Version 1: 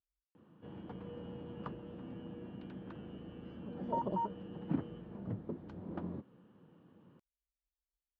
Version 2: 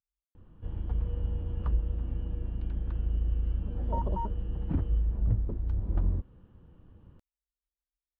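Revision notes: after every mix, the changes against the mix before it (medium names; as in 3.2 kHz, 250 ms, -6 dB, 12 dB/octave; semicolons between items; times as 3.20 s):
background: remove high-pass 160 Hz 24 dB/octave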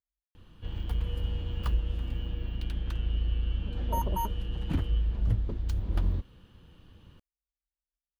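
background: remove Bessel low-pass 890 Hz, order 2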